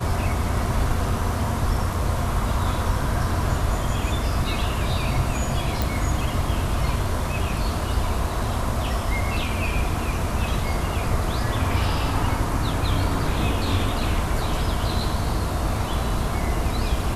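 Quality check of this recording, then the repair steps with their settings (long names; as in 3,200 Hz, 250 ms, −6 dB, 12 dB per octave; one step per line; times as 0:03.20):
0:05.82: click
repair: click removal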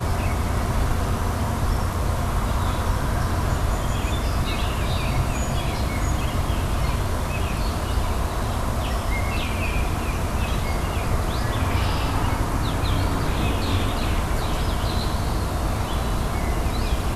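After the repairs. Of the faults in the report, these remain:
none of them is left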